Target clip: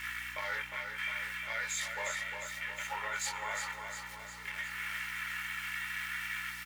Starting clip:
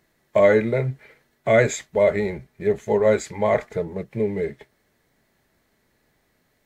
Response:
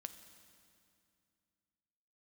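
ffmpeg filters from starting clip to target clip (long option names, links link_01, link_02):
-filter_complex "[0:a]aeval=exprs='val(0)+0.5*0.0562*sgn(val(0))':channel_layout=same,highpass=frequency=1100:width=0.5412,highpass=frequency=1100:width=1.3066,agate=range=-7dB:threshold=-28dB:ratio=16:detection=peak,afwtdn=0.0112,aecho=1:1:2.2:0.58,areverse,acompressor=threshold=-33dB:ratio=6,areverse,alimiter=level_in=9.5dB:limit=-24dB:level=0:latency=1:release=293,volume=-9.5dB,flanger=delay=18:depth=4:speed=0.77,aeval=exprs='val(0)+0.000631*(sin(2*PI*60*n/s)+sin(2*PI*2*60*n/s)/2+sin(2*PI*3*60*n/s)/3+sin(2*PI*4*60*n/s)/4+sin(2*PI*5*60*n/s)/5)':channel_layout=same,aecho=1:1:356|712|1068|1424|1780|2136|2492:0.501|0.276|0.152|0.0834|0.0459|0.0252|0.0139,asplit=2[link_01][link_02];[1:a]atrim=start_sample=2205[link_03];[link_02][link_03]afir=irnorm=-1:irlink=0,volume=-4dB[link_04];[link_01][link_04]amix=inputs=2:normalize=0,volume=6.5dB"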